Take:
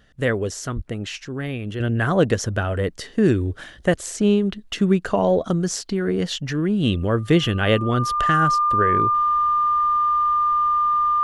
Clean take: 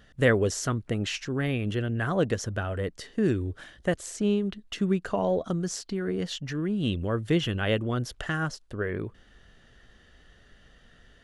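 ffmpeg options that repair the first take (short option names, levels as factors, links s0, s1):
-filter_complex "[0:a]bandreject=f=1200:w=30,asplit=3[s0][s1][s2];[s0]afade=t=out:st=0.75:d=0.02[s3];[s1]highpass=f=140:w=0.5412,highpass=f=140:w=1.3066,afade=t=in:st=0.75:d=0.02,afade=t=out:st=0.87:d=0.02[s4];[s2]afade=t=in:st=0.87:d=0.02[s5];[s3][s4][s5]amix=inputs=3:normalize=0,asetnsamples=n=441:p=0,asendcmd='1.8 volume volume -7.5dB',volume=1"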